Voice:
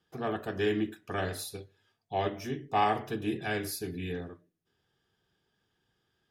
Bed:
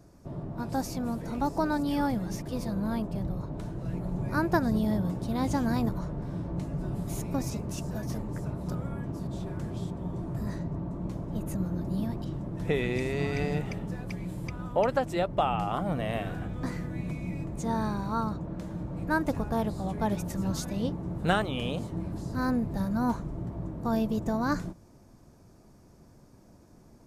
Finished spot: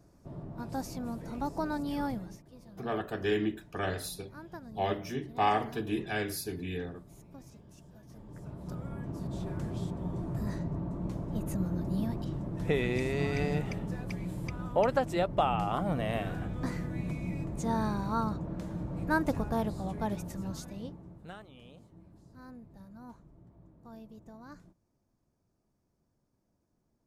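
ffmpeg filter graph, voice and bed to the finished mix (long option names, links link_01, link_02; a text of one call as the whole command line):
ffmpeg -i stem1.wav -i stem2.wav -filter_complex "[0:a]adelay=2650,volume=-0.5dB[link_01];[1:a]volume=13.5dB,afade=type=out:start_time=2.11:duration=0.3:silence=0.188365,afade=type=in:start_time=8.09:duration=1.39:silence=0.112202,afade=type=out:start_time=19.31:duration=2:silence=0.0944061[link_02];[link_01][link_02]amix=inputs=2:normalize=0" out.wav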